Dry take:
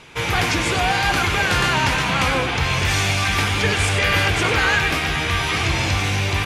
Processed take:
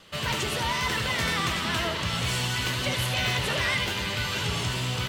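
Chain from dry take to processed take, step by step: vibrato 0.86 Hz 8.4 cents; wide varispeed 1.27×; echo that smears into a reverb 480 ms, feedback 59%, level -16 dB; trim -8.5 dB

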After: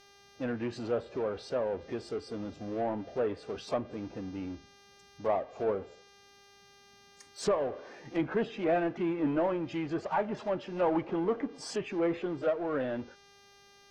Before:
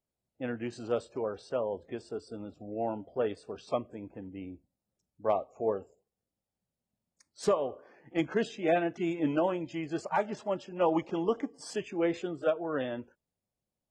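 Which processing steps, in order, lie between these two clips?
power-law waveshaper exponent 0.7; mains buzz 400 Hz, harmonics 16, -56 dBFS -2 dB/octave; low-pass that closes with the level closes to 2.2 kHz, closed at -25 dBFS; trim -3.5 dB

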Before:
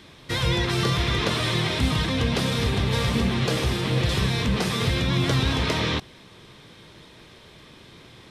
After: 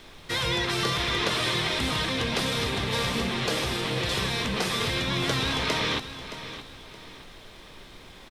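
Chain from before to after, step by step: added noise brown -40 dBFS; bass shelf 250 Hz -11.5 dB; on a send: feedback delay 620 ms, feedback 34%, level -12.5 dB

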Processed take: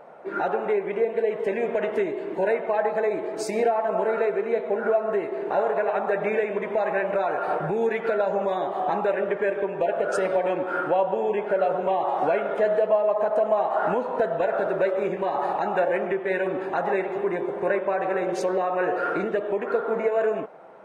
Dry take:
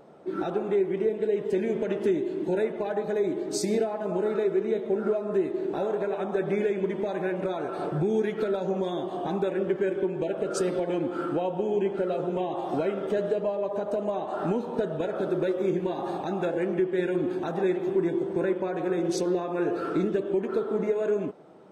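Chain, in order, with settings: high-order bell 1.1 kHz +12.5 dB 2.7 oct; speed mistake 24 fps film run at 25 fps; trim -4 dB

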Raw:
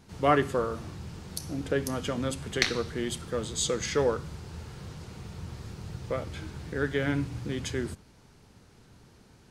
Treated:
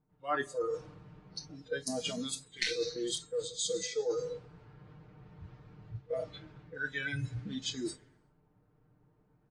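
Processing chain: level-controlled noise filter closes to 980 Hz, open at -25.5 dBFS; comb 6.6 ms, depth 84%; on a send at -13 dB: reverberation, pre-delay 7 ms; on the sum: spectral noise reduction 22 dB; reverse; compression 4:1, threshold -42 dBFS, peak gain reduction 22 dB; reverse; trim +8 dB; AAC 32 kbps 22.05 kHz

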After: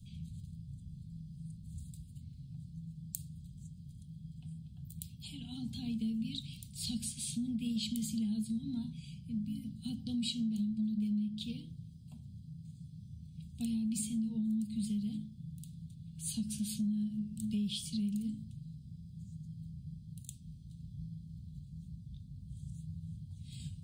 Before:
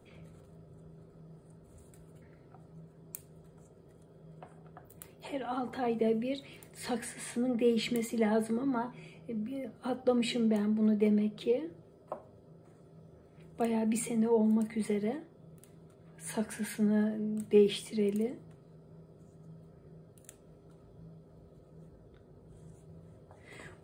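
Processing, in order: inverse Chebyshev band-stop 330–2000 Hz, stop band 40 dB; treble shelf 4.8 kHz -10.5 dB; de-hum 53.46 Hz, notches 10; compression 5:1, threshold -45 dBFS, peak gain reduction 11.5 dB; trim +12.5 dB

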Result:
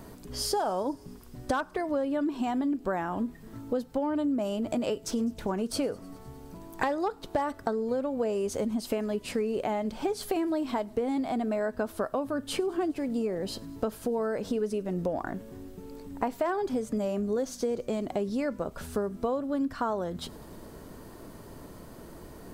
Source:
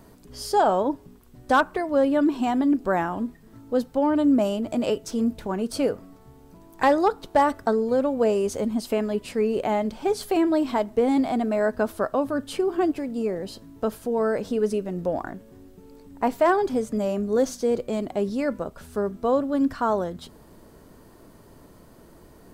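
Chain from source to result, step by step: compression 6:1, threshold -31 dBFS, peak gain reduction 15.5 dB; feedback echo behind a high-pass 102 ms, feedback 81%, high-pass 4.6 kHz, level -23.5 dB; trim +4 dB

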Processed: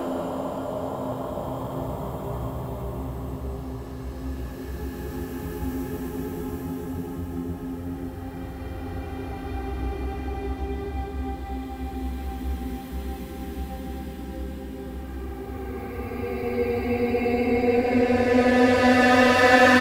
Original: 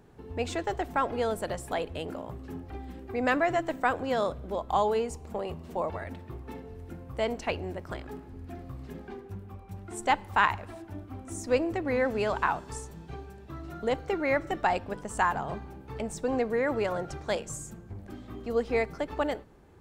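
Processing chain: self-modulated delay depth 0.074 ms; treble shelf 7.7 kHz +11.5 dB; delay 106 ms -12.5 dB; Paulstretch 18×, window 0.25 s, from 2.19 s; trim +8.5 dB

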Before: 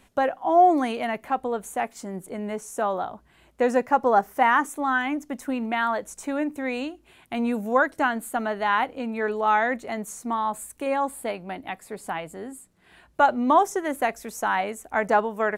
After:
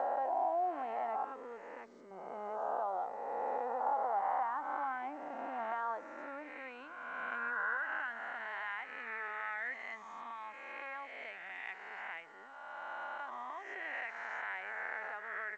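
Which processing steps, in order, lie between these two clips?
reverse spectral sustain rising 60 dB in 2.14 s; 1.24–2.11 s: static phaser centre 310 Hz, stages 4; on a send at -23.5 dB: reverberation RT60 1.7 s, pre-delay 26 ms; on the sum: compression 12:1, threshold -19 dBFS, peak gain reduction 10.5 dB; distance through air 130 m; hum 60 Hz, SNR 26 dB; band-pass sweep 830 Hz -> 2 kHz, 5.37–8.43 s; dynamic bell 370 Hz, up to +4 dB, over -57 dBFS, Q 6.1; trim -8 dB; G.722 64 kbps 16 kHz

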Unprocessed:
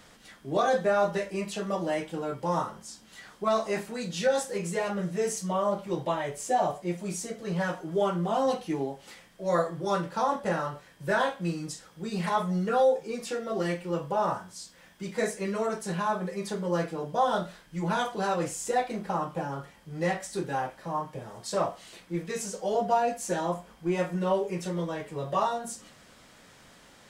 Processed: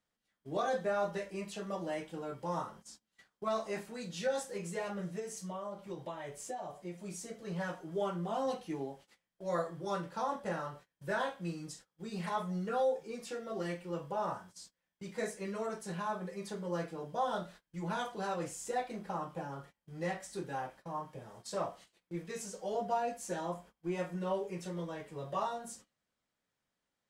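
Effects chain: gate -45 dBFS, range -24 dB; 5.19–7.31 s: compression 6:1, threshold -30 dBFS, peak gain reduction 9.5 dB; trim -8.5 dB

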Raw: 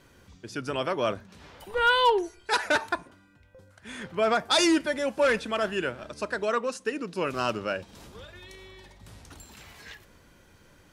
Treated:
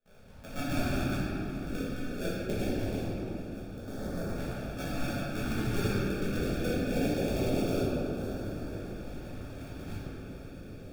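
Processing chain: cycle switcher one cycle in 2, muted; de-hum 62.77 Hz, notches 18; gate with hold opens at -50 dBFS; compressor with a negative ratio -33 dBFS, ratio -0.5; sample-rate reducer 1 kHz, jitter 0%; LFO notch saw up 0.23 Hz 300–3200 Hz; on a send: shuffle delay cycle 1301 ms, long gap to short 1.5:1, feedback 70%, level -18.5 dB; on the sum: simulated room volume 120 m³, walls hard, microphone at 1.4 m; trim -8 dB

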